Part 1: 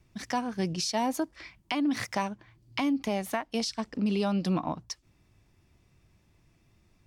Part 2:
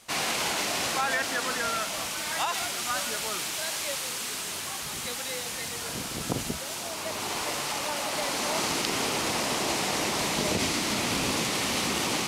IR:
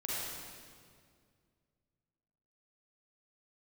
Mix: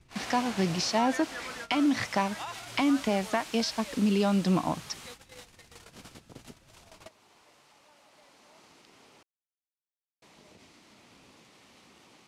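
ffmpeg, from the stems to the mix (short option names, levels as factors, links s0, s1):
-filter_complex "[0:a]lowpass=6100,volume=1.33,asplit=2[s0][s1];[1:a]highshelf=f=7700:g=-9.5,volume=0.335,asplit=3[s2][s3][s4];[s2]atrim=end=9.23,asetpts=PTS-STARTPTS,afade=t=out:st=9.226:d=0.004:c=hsin[s5];[s3]atrim=start=9.23:end=10.22,asetpts=PTS-STARTPTS,volume=0[s6];[s4]atrim=start=10.22,asetpts=PTS-STARTPTS,afade=t=in:d=0.004:c=hsin[s7];[s5][s6][s7]concat=n=3:v=0:a=1[s8];[s1]apad=whole_len=541492[s9];[s8][s9]sidechaingate=range=0.112:threshold=0.00112:ratio=16:detection=peak[s10];[s0][s10]amix=inputs=2:normalize=0"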